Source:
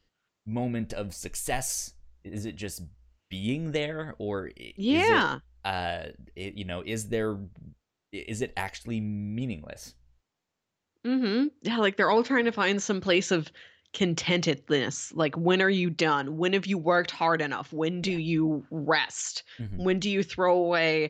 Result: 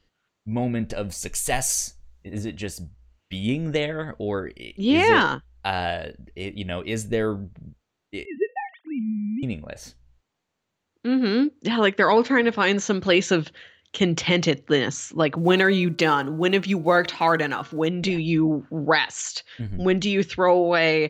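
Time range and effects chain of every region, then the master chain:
1.07–2.33 high shelf 5000 Hz +8 dB + notch 320 Hz, Q 5.8
8.25–9.43 sine-wave speech + air absorption 440 m
15.37–17.89 block floating point 7-bit + de-hum 114.8 Hz, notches 13
whole clip: high shelf 11000 Hz -10.5 dB; notch 5200 Hz, Q 16; gain +5 dB

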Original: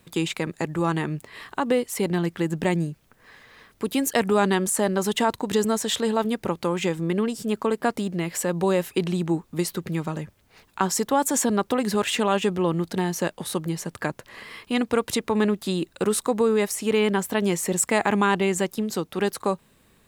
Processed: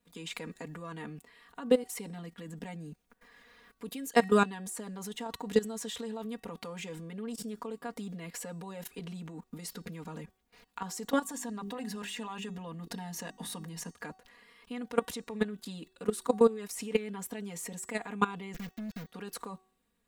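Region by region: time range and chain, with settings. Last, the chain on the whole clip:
11.22–13.91 notches 50/100/150/200/250/300/350/400 Hz + comb 1.1 ms, depth 33%
18.54–19.09 switching dead time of 0.3 ms + EQ curve 140 Hz 0 dB, 370 Hz -16 dB, 1000 Hz -23 dB, 1700 Hz -5 dB, 2900 Hz -9 dB, 5700 Hz -9 dB, 9500 Hz -18 dB, 16000 Hz +2 dB + sample leveller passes 5
whole clip: level quantiser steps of 19 dB; comb 4.2 ms, depth 98%; de-hum 376.2 Hz, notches 25; gain -5 dB

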